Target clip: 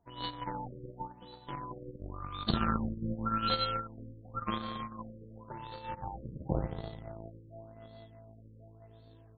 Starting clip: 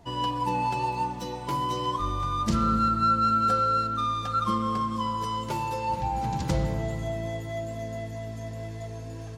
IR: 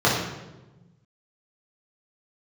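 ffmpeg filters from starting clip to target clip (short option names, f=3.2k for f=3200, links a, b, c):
-af "aeval=exprs='0.211*(cos(1*acos(clip(val(0)/0.211,-1,1)))-cos(1*PI/2))+0.0168*(cos(2*acos(clip(val(0)/0.211,-1,1)))-cos(2*PI/2))+0.0596*(cos(3*acos(clip(val(0)/0.211,-1,1)))-cos(3*PI/2))+0.0015*(cos(7*acos(clip(val(0)/0.211,-1,1)))-cos(7*PI/2))':c=same,highshelf=f=3k:t=q:w=3:g=6,afftfilt=real='re*lt(b*sr/1024,550*pow(4600/550,0.5+0.5*sin(2*PI*0.91*pts/sr)))':imag='im*lt(b*sr/1024,550*pow(4600/550,0.5+0.5*sin(2*PI*0.91*pts/sr)))':win_size=1024:overlap=0.75"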